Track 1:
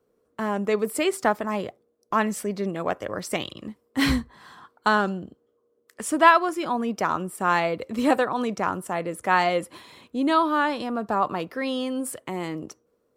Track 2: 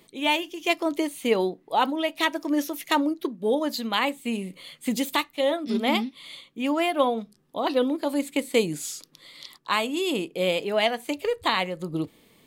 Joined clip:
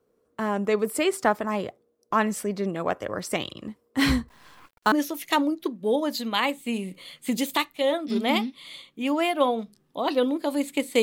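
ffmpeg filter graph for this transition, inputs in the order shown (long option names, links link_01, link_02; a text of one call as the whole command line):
ffmpeg -i cue0.wav -i cue1.wav -filter_complex "[0:a]asettb=1/sr,asplit=3[link_01][link_02][link_03];[link_01]atrim=end=4.284[link_04];[link_02]atrim=start=4.28:end=4.92,asetpts=PTS-STARTPTS,afade=type=in:duration=0.004:curve=qsin,afade=type=out:start_time=0.636:duration=0.004:curve=qsin,acrusher=bits=7:dc=4:mix=0:aa=0.000001[link_05];[link_03]atrim=start=4.916[link_06];[link_04][link_05]acrossfade=duration=0.004:curve1=hsin:curve2=qsin[link_07];[link_07][link_06]acrossfade=duration=0.004:curve1=qsin:curve2=hsin,apad=whole_dur=11.02,atrim=end=11.02,atrim=end=4.922[link_08];[1:a]atrim=start=2.508:end=8.61[link_09];[link_08][link_09]acrossfade=duration=0.004:curve1=hsin:curve2=hsin" out.wav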